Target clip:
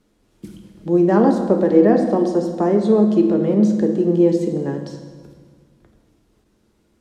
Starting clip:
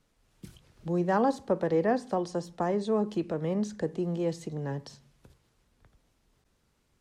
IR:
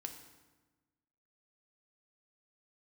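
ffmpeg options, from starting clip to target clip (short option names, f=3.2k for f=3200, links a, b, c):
-filter_complex "[0:a]equalizer=f=320:t=o:w=1.3:g=11[a];[1:a]atrim=start_sample=2205,asetrate=30870,aresample=44100[b];[a][b]afir=irnorm=-1:irlink=0,volume=6dB"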